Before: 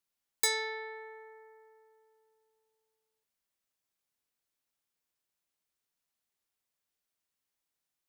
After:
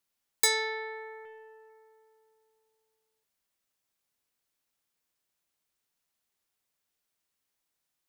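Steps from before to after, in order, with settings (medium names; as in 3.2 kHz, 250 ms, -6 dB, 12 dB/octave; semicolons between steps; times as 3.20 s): 1.25–1.70 s: loudspeaker Doppler distortion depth 0.18 ms; trim +4 dB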